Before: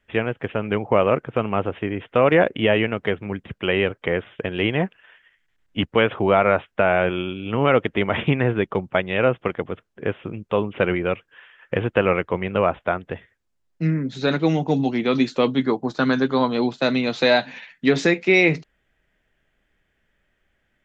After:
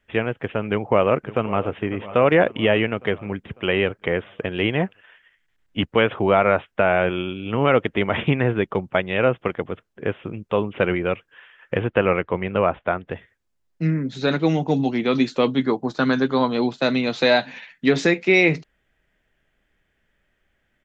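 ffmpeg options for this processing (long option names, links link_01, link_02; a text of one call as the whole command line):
ffmpeg -i in.wav -filter_complex "[0:a]asplit=2[link_01][link_02];[link_02]afade=type=in:start_time=0.68:duration=0.01,afade=type=out:start_time=1.71:duration=0.01,aecho=0:1:550|1100|1650|2200|2750|3300:0.149624|0.0897741|0.0538645|0.0323187|0.0193912|0.0116347[link_03];[link_01][link_03]amix=inputs=2:normalize=0,asettb=1/sr,asplit=3[link_04][link_05][link_06];[link_04]atrim=end=11.814[link_07];[link_05]atrim=start=11.81:end=13.08,asetpts=PTS-STARTPTS,afade=type=in:duration=0.004:curve=qsin,afade=type=out:start_time=1.266:duration=0.004:curve=qsin,lowpass=3700[link_08];[link_06]atrim=start=13.076[link_09];[link_07][link_08]acrossfade=duration=0.004:curve1=hsin:curve2=qsin[link_10];[link_10][link_09]acrossfade=duration=0.004:curve1=qsin:curve2=hsin" out.wav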